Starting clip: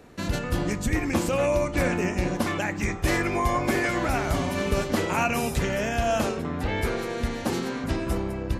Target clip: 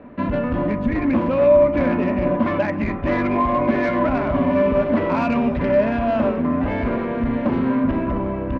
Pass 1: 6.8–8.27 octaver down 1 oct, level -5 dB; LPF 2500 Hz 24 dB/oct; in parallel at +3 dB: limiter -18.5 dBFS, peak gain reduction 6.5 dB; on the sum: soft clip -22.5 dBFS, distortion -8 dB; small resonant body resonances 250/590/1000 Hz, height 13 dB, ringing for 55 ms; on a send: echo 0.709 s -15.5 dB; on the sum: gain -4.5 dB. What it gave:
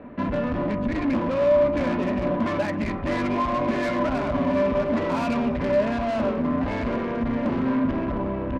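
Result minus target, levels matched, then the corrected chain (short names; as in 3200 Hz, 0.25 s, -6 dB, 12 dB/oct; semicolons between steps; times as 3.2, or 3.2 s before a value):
soft clip: distortion +9 dB
6.8–8.27 octaver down 1 oct, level -5 dB; LPF 2500 Hz 24 dB/oct; in parallel at +3 dB: limiter -18.5 dBFS, peak gain reduction 6.5 dB; on the sum: soft clip -13.5 dBFS, distortion -17 dB; small resonant body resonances 250/590/1000 Hz, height 13 dB, ringing for 55 ms; on a send: echo 0.709 s -15.5 dB; on the sum: gain -4.5 dB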